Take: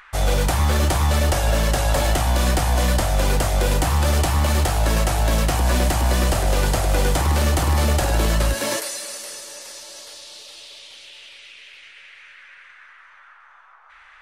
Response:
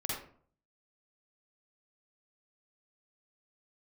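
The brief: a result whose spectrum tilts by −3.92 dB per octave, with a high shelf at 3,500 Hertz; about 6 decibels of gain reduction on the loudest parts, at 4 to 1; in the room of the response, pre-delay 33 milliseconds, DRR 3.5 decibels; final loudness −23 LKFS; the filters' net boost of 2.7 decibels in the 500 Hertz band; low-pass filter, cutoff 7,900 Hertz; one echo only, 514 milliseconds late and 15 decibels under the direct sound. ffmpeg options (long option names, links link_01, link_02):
-filter_complex "[0:a]lowpass=7900,equalizer=frequency=500:width_type=o:gain=3,highshelf=frequency=3500:gain=8.5,acompressor=threshold=-21dB:ratio=4,aecho=1:1:514:0.178,asplit=2[link_01][link_02];[1:a]atrim=start_sample=2205,adelay=33[link_03];[link_02][link_03]afir=irnorm=-1:irlink=0,volume=-7dB[link_04];[link_01][link_04]amix=inputs=2:normalize=0,volume=-0.5dB"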